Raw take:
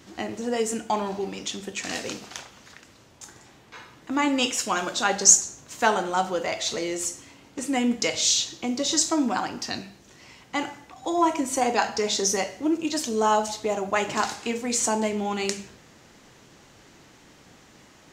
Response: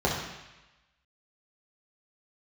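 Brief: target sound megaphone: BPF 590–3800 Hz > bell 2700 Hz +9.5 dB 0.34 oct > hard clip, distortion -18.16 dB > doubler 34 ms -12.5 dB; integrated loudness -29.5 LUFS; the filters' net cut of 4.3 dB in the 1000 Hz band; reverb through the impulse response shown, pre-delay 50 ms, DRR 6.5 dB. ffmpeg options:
-filter_complex "[0:a]equalizer=f=1k:t=o:g=-4.5,asplit=2[a][b];[1:a]atrim=start_sample=2205,adelay=50[c];[b][c]afir=irnorm=-1:irlink=0,volume=-20.5dB[d];[a][d]amix=inputs=2:normalize=0,highpass=590,lowpass=3.8k,equalizer=f=2.7k:t=o:w=0.34:g=9.5,asoftclip=type=hard:threshold=-17.5dB,asplit=2[e][f];[f]adelay=34,volume=-12.5dB[g];[e][g]amix=inputs=2:normalize=0,volume=-1dB"

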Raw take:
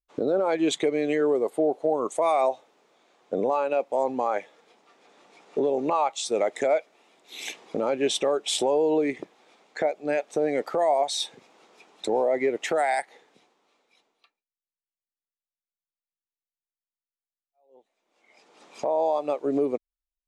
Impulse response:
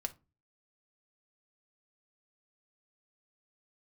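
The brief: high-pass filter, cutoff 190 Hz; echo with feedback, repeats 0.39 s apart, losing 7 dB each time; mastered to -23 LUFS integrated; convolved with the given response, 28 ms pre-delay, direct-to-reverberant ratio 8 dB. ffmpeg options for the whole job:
-filter_complex "[0:a]highpass=190,aecho=1:1:390|780|1170|1560|1950:0.447|0.201|0.0905|0.0407|0.0183,asplit=2[a][b];[1:a]atrim=start_sample=2205,adelay=28[c];[b][c]afir=irnorm=-1:irlink=0,volume=-7.5dB[d];[a][d]amix=inputs=2:normalize=0,volume=2dB"

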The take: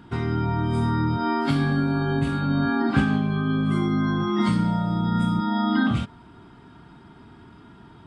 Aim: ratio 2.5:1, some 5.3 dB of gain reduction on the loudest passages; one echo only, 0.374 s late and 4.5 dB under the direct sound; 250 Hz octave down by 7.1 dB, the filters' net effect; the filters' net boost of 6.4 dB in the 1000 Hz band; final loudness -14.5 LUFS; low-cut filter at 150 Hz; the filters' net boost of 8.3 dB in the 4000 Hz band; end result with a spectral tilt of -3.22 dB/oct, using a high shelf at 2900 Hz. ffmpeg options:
-af "highpass=150,equalizer=f=250:t=o:g=-8.5,equalizer=f=1k:t=o:g=7,highshelf=f=2.9k:g=6.5,equalizer=f=4k:t=o:g=5,acompressor=threshold=-25dB:ratio=2.5,aecho=1:1:374:0.596,volume=12dB"

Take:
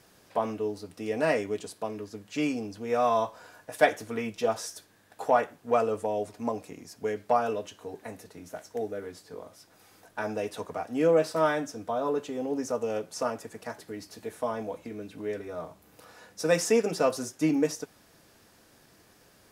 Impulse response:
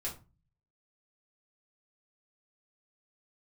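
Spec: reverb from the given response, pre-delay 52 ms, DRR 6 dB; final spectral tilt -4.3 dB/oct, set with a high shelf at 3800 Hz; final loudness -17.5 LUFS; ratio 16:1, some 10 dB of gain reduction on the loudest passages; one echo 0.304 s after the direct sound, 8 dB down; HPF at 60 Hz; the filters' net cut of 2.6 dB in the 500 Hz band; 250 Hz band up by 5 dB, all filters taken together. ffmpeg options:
-filter_complex "[0:a]highpass=60,equalizer=f=250:t=o:g=7.5,equalizer=f=500:t=o:g=-5,highshelf=f=3.8k:g=5.5,acompressor=threshold=-27dB:ratio=16,aecho=1:1:304:0.398,asplit=2[a][b];[1:a]atrim=start_sample=2205,adelay=52[c];[b][c]afir=irnorm=-1:irlink=0,volume=-7dB[d];[a][d]amix=inputs=2:normalize=0,volume=15.5dB"

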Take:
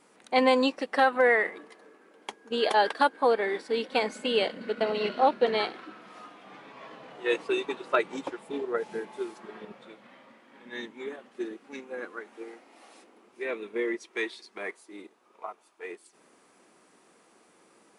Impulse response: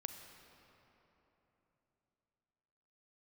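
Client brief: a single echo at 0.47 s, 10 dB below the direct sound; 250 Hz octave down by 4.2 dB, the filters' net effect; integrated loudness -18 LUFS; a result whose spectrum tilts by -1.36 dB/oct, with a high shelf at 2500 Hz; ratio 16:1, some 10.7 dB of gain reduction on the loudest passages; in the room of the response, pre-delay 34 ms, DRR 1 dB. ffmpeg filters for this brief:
-filter_complex "[0:a]equalizer=f=250:t=o:g=-5,highshelf=f=2.5k:g=-8,acompressor=threshold=-29dB:ratio=16,aecho=1:1:470:0.316,asplit=2[a][b];[1:a]atrim=start_sample=2205,adelay=34[c];[b][c]afir=irnorm=-1:irlink=0,volume=1.5dB[d];[a][d]amix=inputs=2:normalize=0,volume=17dB"

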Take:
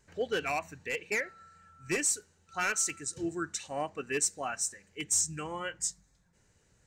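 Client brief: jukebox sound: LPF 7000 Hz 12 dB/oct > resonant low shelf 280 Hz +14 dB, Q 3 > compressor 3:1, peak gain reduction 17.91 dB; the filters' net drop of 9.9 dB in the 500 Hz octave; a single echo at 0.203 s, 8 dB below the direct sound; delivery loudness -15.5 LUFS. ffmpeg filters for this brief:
-af "lowpass=7k,lowshelf=f=280:t=q:w=3:g=14,equalizer=f=500:t=o:g=-6.5,aecho=1:1:203:0.398,acompressor=threshold=-43dB:ratio=3,volume=27dB"

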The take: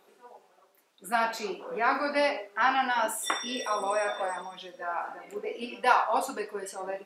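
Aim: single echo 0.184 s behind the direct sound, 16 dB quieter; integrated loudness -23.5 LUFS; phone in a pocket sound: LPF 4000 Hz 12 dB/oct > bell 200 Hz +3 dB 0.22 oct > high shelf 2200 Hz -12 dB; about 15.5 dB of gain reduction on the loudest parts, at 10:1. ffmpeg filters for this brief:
-af "acompressor=threshold=-32dB:ratio=10,lowpass=4k,equalizer=f=200:t=o:w=0.22:g=3,highshelf=f=2.2k:g=-12,aecho=1:1:184:0.158,volume=16dB"

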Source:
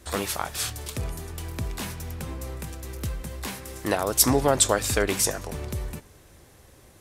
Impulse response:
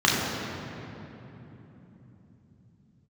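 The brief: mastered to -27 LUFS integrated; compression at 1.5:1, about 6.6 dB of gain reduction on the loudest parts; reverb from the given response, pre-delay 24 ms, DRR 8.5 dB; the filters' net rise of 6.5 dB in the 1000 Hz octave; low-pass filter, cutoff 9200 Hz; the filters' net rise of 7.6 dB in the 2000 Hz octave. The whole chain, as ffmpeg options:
-filter_complex "[0:a]lowpass=9.2k,equalizer=f=1k:t=o:g=6.5,equalizer=f=2k:t=o:g=7.5,acompressor=threshold=-30dB:ratio=1.5,asplit=2[a][b];[1:a]atrim=start_sample=2205,adelay=24[c];[b][c]afir=irnorm=-1:irlink=0,volume=-28dB[d];[a][d]amix=inputs=2:normalize=0,volume=2dB"

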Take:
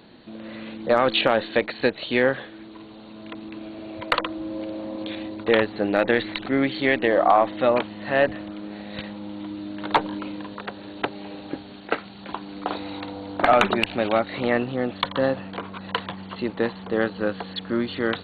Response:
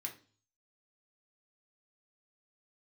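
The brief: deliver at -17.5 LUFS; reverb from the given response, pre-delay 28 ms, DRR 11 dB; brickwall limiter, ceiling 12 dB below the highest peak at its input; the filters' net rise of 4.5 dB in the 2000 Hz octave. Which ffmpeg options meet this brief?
-filter_complex "[0:a]equalizer=f=2k:t=o:g=5.5,alimiter=limit=-13dB:level=0:latency=1,asplit=2[a][b];[1:a]atrim=start_sample=2205,adelay=28[c];[b][c]afir=irnorm=-1:irlink=0,volume=-9.5dB[d];[a][d]amix=inputs=2:normalize=0,volume=10.5dB"

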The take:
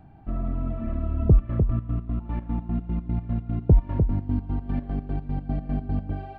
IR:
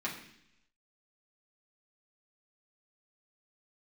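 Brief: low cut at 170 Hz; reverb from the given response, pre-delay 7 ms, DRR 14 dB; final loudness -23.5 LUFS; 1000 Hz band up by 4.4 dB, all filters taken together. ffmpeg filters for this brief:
-filter_complex "[0:a]highpass=170,equalizer=f=1k:t=o:g=6,asplit=2[a][b];[1:a]atrim=start_sample=2205,adelay=7[c];[b][c]afir=irnorm=-1:irlink=0,volume=-18.5dB[d];[a][d]amix=inputs=2:normalize=0,volume=9dB"

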